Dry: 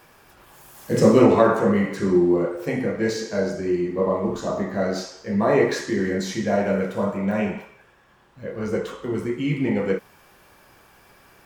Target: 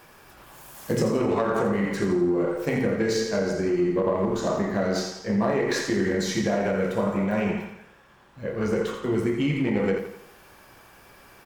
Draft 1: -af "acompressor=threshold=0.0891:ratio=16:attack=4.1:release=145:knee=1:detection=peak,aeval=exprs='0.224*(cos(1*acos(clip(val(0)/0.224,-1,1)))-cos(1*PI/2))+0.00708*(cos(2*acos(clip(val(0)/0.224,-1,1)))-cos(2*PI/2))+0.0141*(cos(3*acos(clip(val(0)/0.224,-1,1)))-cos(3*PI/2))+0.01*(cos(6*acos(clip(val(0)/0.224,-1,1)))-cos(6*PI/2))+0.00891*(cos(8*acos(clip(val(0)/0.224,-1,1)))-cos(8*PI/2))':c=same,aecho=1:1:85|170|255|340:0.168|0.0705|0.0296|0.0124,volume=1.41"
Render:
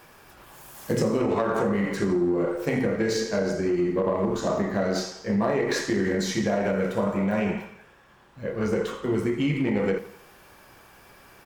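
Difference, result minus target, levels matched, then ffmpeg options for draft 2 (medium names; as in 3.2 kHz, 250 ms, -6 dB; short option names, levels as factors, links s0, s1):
echo-to-direct -7 dB
-af "acompressor=threshold=0.0891:ratio=16:attack=4.1:release=145:knee=1:detection=peak,aeval=exprs='0.224*(cos(1*acos(clip(val(0)/0.224,-1,1)))-cos(1*PI/2))+0.00708*(cos(2*acos(clip(val(0)/0.224,-1,1)))-cos(2*PI/2))+0.0141*(cos(3*acos(clip(val(0)/0.224,-1,1)))-cos(3*PI/2))+0.01*(cos(6*acos(clip(val(0)/0.224,-1,1)))-cos(6*PI/2))+0.00891*(cos(8*acos(clip(val(0)/0.224,-1,1)))-cos(8*PI/2))':c=same,aecho=1:1:85|170|255|340|425:0.376|0.158|0.0663|0.0278|0.0117,volume=1.41"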